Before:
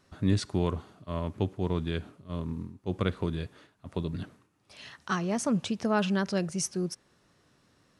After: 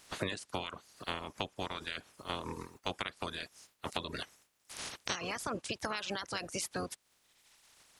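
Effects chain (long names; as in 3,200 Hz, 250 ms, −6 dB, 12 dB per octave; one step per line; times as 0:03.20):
ceiling on every frequency bin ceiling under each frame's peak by 28 dB
downward compressor 6 to 1, threshold −40 dBFS, peak gain reduction 19.5 dB
reverb reduction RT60 1.5 s
level +6 dB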